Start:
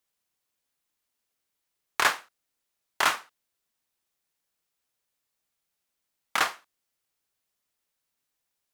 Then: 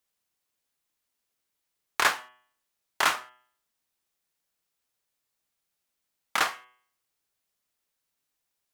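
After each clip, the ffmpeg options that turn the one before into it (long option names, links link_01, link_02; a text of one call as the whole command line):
ffmpeg -i in.wav -af "bandreject=frequency=124.4:width_type=h:width=4,bandreject=frequency=248.8:width_type=h:width=4,bandreject=frequency=373.2:width_type=h:width=4,bandreject=frequency=497.6:width_type=h:width=4,bandreject=frequency=622:width_type=h:width=4,bandreject=frequency=746.4:width_type=h:width=4,bandreject=frequency=870.8:width_type=h:width=4,bandreject=frequency=995.2:width_type=h:width=4,bandreject=frequency=1119.6:width_type=h:width=4,bandreject=frequency=1244:width_type=h:width=4,bandreject=frequency=1368.4:width_type=h:width=4,bandreject=frequency=1492.8:width_type=h:width=4,bandreject=frequency=1617.2:width_type=h:width=4,bandreject=frequency=1741.6:width_type=h:width=4,bandreject=frequency=1866:width_type=h:width=4,bandreject=frequency=1990.4:width_type=h:width=4,bandreject=frequency=2114.8:width_type=h:width=4,bandreject=frequency=2239.2:width_type=h:width=4,bandreject=frequency=2363.6:width_type=h:width=4,bandreject=frequency=2488:width_type=h:width=4,bandreject=frequency=2612.4:width_type=h:width=4,bandreject=frequency=2736.8:width_type=h:width=4,bandreject=frequency=2861.2:width_type=h:width=4,bandreject=frequency=2985.6:width_type=h:width=4,bandreject=frequency=3110:width_type=h:width=4,bandreject=frequency=3234.4:width_type=h:width=4,bandreject=frequency=3358.8:width_type=h:width=4" out.wav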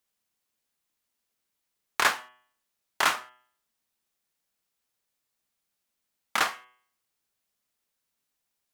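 ffmpeg -i in.wav -af "equalizer=frequency=220:width=6.8:gain=5.5" out.wav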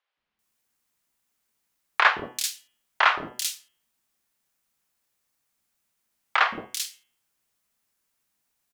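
ffmpeg -i in.wav -filter_complex "[0:a]acrossover=split=490|3800[link_01][link_02][link_03];[link_01]adelay=170[link_04];[link_03]adelay=390[link_05];[link_04][link_02][link_05]amix=inputs=3:normalize=0,volume=5.5dB" out.wav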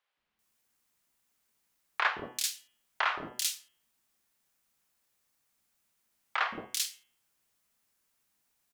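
ffmpeg -i in.wav -af "alimiter=limit=-15.5dB:level=0:latency=1:release=470" out.wav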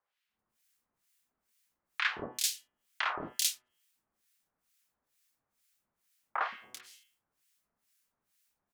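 ffmpeg -i in.wav -filter_complex "[0:a]acrossover=split=1500[link_01][link_02];[link_01]aeval=exprs='val(0)*(1-1/2+1/2*cos(2*PI*2.2*n/s))':channel_layout=same[link_03];[link_02]aeval=exprs='val(0)*(1-1/2-1/2*cos(2*PI*2.2*n/s))':channel_layout=same[link_04];[link_03][link_04]amix=inputs=2:normalize=0,volume=2.5dB" out.wav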